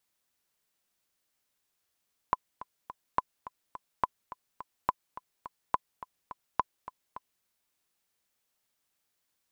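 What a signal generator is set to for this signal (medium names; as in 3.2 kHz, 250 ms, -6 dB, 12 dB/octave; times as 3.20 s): metronome 211 bpm, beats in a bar 3, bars 6, 1.01 kHz, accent 16 dB -11 dBFS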